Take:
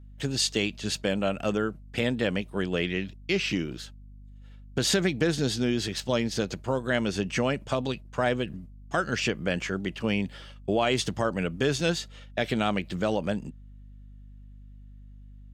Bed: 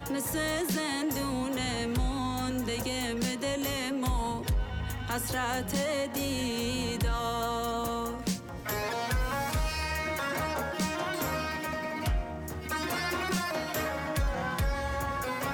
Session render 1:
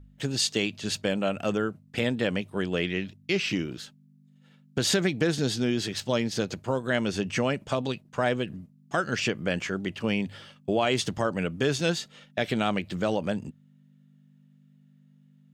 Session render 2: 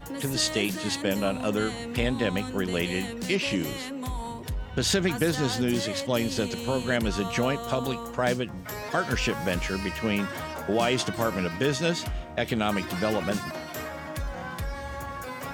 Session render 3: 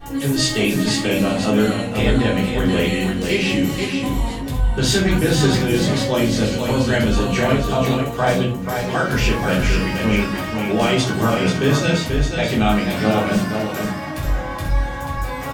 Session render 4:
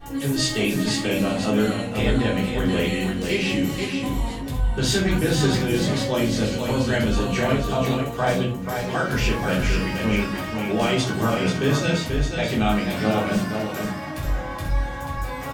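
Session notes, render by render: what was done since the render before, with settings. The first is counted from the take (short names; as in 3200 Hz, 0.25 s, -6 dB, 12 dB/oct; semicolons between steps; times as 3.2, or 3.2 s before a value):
de-hum 50 Hz, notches 2
add bed -3.5 dB
echo 0.485 s -5.5 dB; shoebox room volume 290 m³, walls furnished, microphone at 3.6 m
gain -4 dB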